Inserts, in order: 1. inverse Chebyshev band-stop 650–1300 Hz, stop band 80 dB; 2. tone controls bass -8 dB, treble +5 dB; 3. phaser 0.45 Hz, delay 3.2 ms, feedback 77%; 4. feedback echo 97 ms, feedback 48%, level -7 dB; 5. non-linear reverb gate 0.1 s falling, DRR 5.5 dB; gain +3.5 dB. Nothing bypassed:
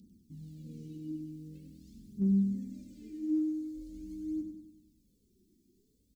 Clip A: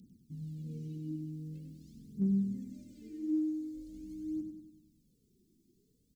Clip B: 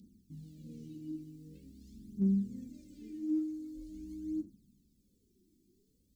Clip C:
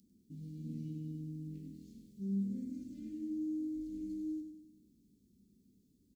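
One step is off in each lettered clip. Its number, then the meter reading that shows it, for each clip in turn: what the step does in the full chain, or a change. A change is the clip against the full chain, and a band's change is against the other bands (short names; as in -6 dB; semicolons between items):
5, echo-to-direct -2.0 dB to -6.0 dB; 4, echo-to-direct -2.0 dB to -5.5 dB; 3, crest factor change -2.5 dB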